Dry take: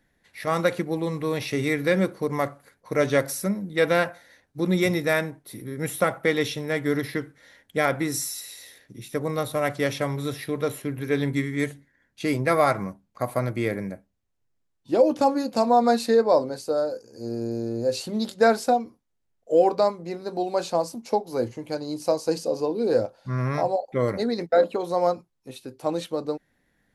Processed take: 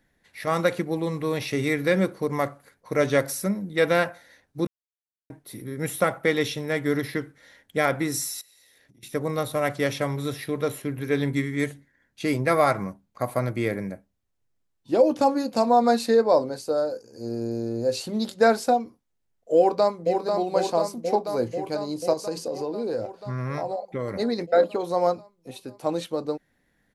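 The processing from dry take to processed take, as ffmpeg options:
ffmpeg -i in.wav -filter_complex "[0:a]asettb=1/sr,asplit=3[link_01][link_02][link_03];[link_01]atrim=end=8.414[link_04];[link_02]atrim=start=8.41:end=9.03,asetpts=PTS-STARTPTS,afade=type=in:duration=0.004:curve=qsin,afade=type=out:start_time=0.616:duration=0.004:curve=qsin,acompressor=threshold=-54dB:ratio=12:attack=3.2:release=140:knee=1:detection=peak[link_05];[link_03]atrim=start=9.026[link_06];[link_04][link_05]acrossfade=duration=0.004:curve1=hsin:curve2=qsin[link_07];[link_07][link_06]acrossfade=duration=0.004:curve1=qsin:curve2=hsin,asplit=2[link_08][link_09];[link_09]afade=type=in:start_time=19.57:duration=0.01,afade=type=out:start_time=20.14:duration=0.01,aecho=0:1:490|980|1470|1960|2450|2940|3430|3920|4410|4900|5390|5880:0.562341|0.421756|0.316317|0.237238|0.177928|0.133446|0.100085|0.0750635|0.0562976|0.0422232|0.0316674|0.0237506[link_10];[link_08][link_10]amix=inputs=2:normalize=0,asettb=1/sr,asplit=3[link_11][link_12][link_13];[link_11]atrim=end=22.134[link_14];[link_12]atrim=start=22.13:end=24.16,asetpts=PTS-STARTPTS,afade=type=in:duration=0.004:curve=qsin,afade=type=out:start_time=2.026:duration=0.004:curve=qsin,acompressor=threshold=-26dB:ratio=3:attack=3.2:release=140:knee=1:detection=peak[link_15];[link_13]atrim=start=24.156[link_16];[link_14][link_15]acrossfade=duration=0.004:curve1=hsin:curve2=qsin[link_17];[link_17][link_16]acrossfade=duration=0.004:curve1=qsin:curve2=hsin,asplit=3[link_18][link_19][link_20];[link_18]atrim=end=4.67,asetpts=PTS-STARTPTS,afade=type=out:start_time=4.666:duration=0.004:curve=hsin[link_21];[link_19]atrim=start=4.67:end=5.3,asetpts=PTS-STARTPTS,volume=0[link_22];[link_20]atrim=start=5.3,asetpts=PTS-STARTPTS,afade=type=in:duration=0.004:curve=hsin[link_23];[link_21][link_22][link_23]concat=n=3:v=0:a=1" out.wav

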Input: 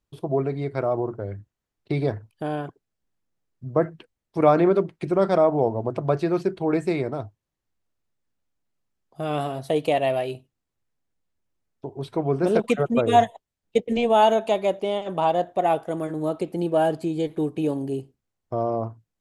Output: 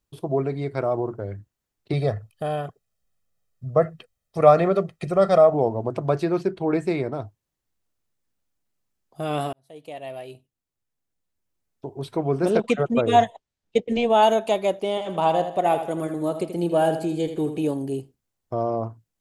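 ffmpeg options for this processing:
ffmpeg -i in.wav -filter_complex "[0:a]asettb=1/sr,asplit=3[link_01][link_02][link_03];[link_01]atrim=end=1.934[link_04];[link_02]atrim=start=1.93:end=5.54,asetpts=PTS-STARTPTS,afade=type=in:duration=0.004:curve=qsin,afade=type=out:start_time=3.606:duration=0.004:curve=qsin,aecho=1:1:1.6:0.65,atrim=end_sample=159201[link_05];[link_03]atrim=start=5.536[link_06];[link_04][link_05]acrossfade=duration=0.004:curve1=hsin:curve2=qsin[link_07];[link_07][link_06]acrossfade=duration=0.004:curve1=qsin:curve2=hsin,asettb=1/sr,asplit=3[link_08][link_09][link_10];[link_08]atrim=end=6.254[link_11];[link_09]atrim=start=6.25:end=7.22,asetpts=PTS-STARTPTS,afade=type=in:duration=0.004:curve=qsin,afade=type=out:start_time=0.966:duration=0.004:curve=qsin,highshelf=frequency=6300:gain=-9.5[link_12];[link_10]atrim=start=7.216[link_13];[link_11][link_12]acrossfade=duration=0.004:curve1=hsin:curve2=qsin[link_14];[link_14][link_13]acrossfade=duration=0.004:curve1=qsin:curve2=hsin,asettb=1/sr,asplit=3[link_15][link_16][link_17];[link_15]atrim=end=12.504[link_18];[link_16]atrim=start=12.5:end=14.23,asetpts=PTS-STARTPTS,afade=type=in:duration=0.004:curve=qsin,afade=type=out:start_time=1.726:duration=0.004:curve=qsin,lowpass=6300[link_19];[link_17]atrim=start=14.226[link_20];[link_18][link_19]acrossfade=duration=0.004:curve1=hsin:curve2=qsin[link_21];[link_21][link_20]acrossfade=duration=0.004:curve1=qsin:curve2=hsin,asettb=1/sr,asplit=3[link_22][link_23][link_24];[link_22]atrim=end=14.894[link_25];[link_23]atrim=start=14.89:end=17.63,asetpts=PTS-STARTPTS,afade=type=in:duration=0.004:curve=qsin,afade=type=out:start_time=2.736:duration=0.004:curve=qsin,aecho=1:1:81|162|243|324:0.335|0.127|0.0484|0.0184,atrim=end_sample=120834[link_26];[link_24]atrim=start=17.626[link_27];[link_25][link_26]acrossfade=duration=0.004:curve1=hsin:curve2=qsin[link_28];[link_28][link_27]acrossfade=duration=0.004:curve1=qsin:curve2=hsin,asplit=2[link_29][link_30];[link_29]atrim=end=9.53,asetpts=PTS-STARTPTS,afade=type=out:start_time=9.526:duration=0.004:curve=hsin[link_31];[link_30]atrim=start=9.53,asetpts=PTS-STARTPTS,afade=type=in:duration=2.38[link_32];[link_31][link_32]concat=n=2:v=0:a=1,highshelf=frequency=5500:gain=6.5" out.wav

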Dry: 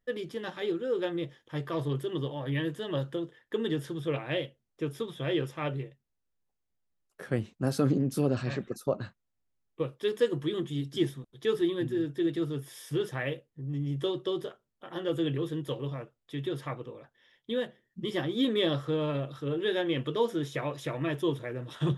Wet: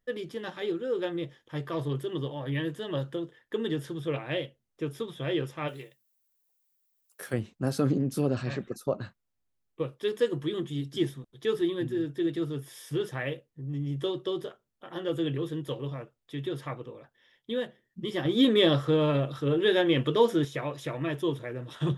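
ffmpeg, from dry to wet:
ffmpeg -i in.wav -filter_complex "[0:a]asplit=3[link_01][link_02][link_03];[link_01]afade=type=out:start_time=5.67:duration=0.02[link_04];[link_02]aemphasis=mode=production:type=riaa,afade=type=in:start_time=5.67:duration=0.02,afade=type=out:start_time=7.32:duration=0.02[link_05];[link_03]afade=type=in:start_time=7.32:duration=0.02[link_06];[link_04][link_05][link_06]amix=inputs=3:normalize=0,asettb=1/sr,asplit=3[link_07][link_08][link_09];[link_07]atrim=end=18.254[link_10];[link_08]atrim=start=18.25:end=20.45,asetpts=PTS-STARTPTS,afade=type=in:duration=0.004:curve=qsin,afade=type=out:start_time=2.196:duration=0.004:curve=qsin,acontrast=39[link_11];[link_09]atrim=start=20.446[link_12];[link_10][link_11]acrossfade=duration=0.004:curve1=hsin:curve2=qsin[link_13];[link_13][link_12]acrossfade=duration=0.004:curve1=qsin:curve2=hsin" out.wav

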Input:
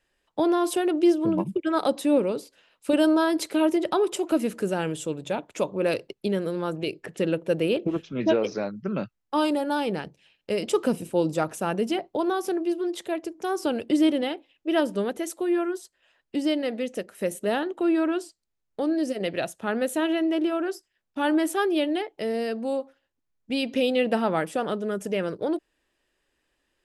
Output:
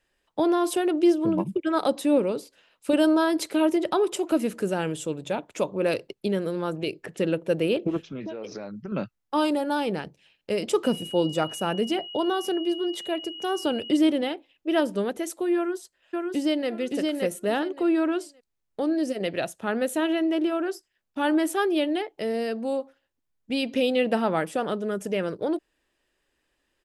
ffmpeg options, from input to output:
ffmpeg -i in.wav -filter_complex "[0:a]asettb=1/sr,asplit=3[link_01][link_02][link_03];[link_01]atrim=end=8.004[link_04];[link_02]atrim=start=8:end=8.92,asetpts=PTS-STARTPTS,afade=type=in:duration=0.004:curve=qsin,afade=type=out:start_time=0.916:duration=0.004:curve=qsin,acompressor=threshold=-31dB:ratio=12:attack=3.2:release=140:knee=1:detection=peak[link_05];[link_03]atrim=start=8.916[link_06];[link_04][link_05]acrossfade=duration=0.004:curve1=hsin:curve2=qsin[link_07];[link_07][link_06]acrossfade=duration=0.004:curve1=qsin:curve2=hsin,asettb=1/sr,asplit=3[link_08][link_09][link_10];[link_08]atrim=end=10.844[link_11];[link_09]atrim=start=10.84:end=13.97,asetpts=PTS-STARTPTS,afade=type=in:duration=0.004:curve=qsin,afade=type=out:start_time=3.126:duration=0.004:curve=qsin,aeval=exprs='val(0)+0.0141*sin(2*PI*2900*n/s)':channel_layout=same[link_12];[link_10]atrim=start=13.966[link_13];[link_11][link_12]acrossfade=duration=0.004:curve1=hsin:curve2=qsin[link_14];[link_14][link_13]acrossfade=duration=0.004:curve1=qsin:curve2=hsin,asplit=2[link_15][link_16];[link_16]afade=type=in:start_time=15.56:duration=0.01,afade=type=out:start_time=16.69:duration=0.01,aecho=0:1:570|1140|1710:0.749894|0.149979|0.0299958[link_17];[link_15][link_17]amix=inputs=2:normalize=0" out.wav

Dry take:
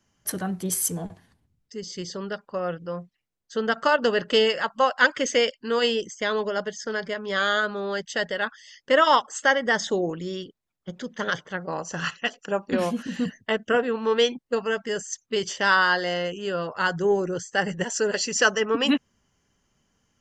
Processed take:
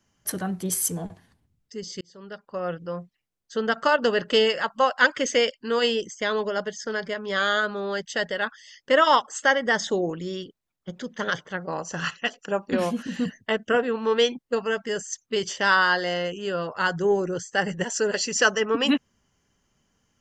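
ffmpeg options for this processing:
ffmpeg -i in.wav -filter_complex "[0:a]asplit=2[link_01][link_02];[link_01]atrim=end=2.01,asetpts=PTS-STARTPTS,afade=type=out:start_time=2.006:duration=0.004:curve=hsin[link_03];[link_02]atrim=start=2.01,asetpts=PTS-STARTPTS,afade=type=in:duration=0.71[link_04];[link_03][link_04]concat=n=2:v=0:a=1" out.wav

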